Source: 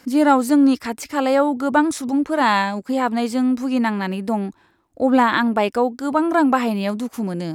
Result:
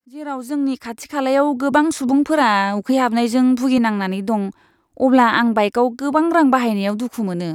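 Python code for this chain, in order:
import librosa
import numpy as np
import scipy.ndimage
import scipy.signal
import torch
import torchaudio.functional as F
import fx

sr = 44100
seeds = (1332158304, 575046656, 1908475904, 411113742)

y = fx.fade_in_head(x, sr, length_s=1.64)
y = fx.band_squash(y, sr, depth_pct=70, at=(1.72, 3.78))
y = F.gain(torch.from_numpy(y), 2.5).numpy()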